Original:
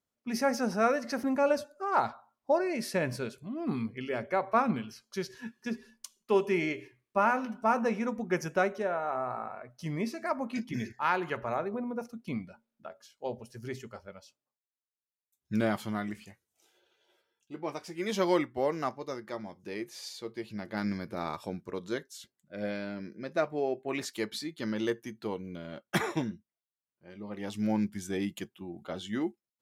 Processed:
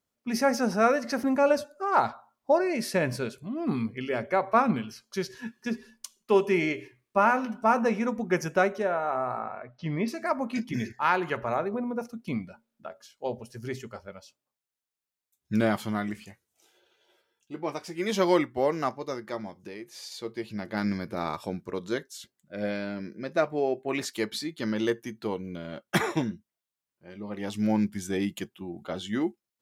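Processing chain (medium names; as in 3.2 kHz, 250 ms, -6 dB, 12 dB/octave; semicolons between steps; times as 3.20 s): 9.39–10.08 s: low-pass 4.1 kHz 24 dB/octave; 19.49–20.12 s: compression 3:1, threshold -44 dBFS, peak gain reduction 9 dB; trim +4 dB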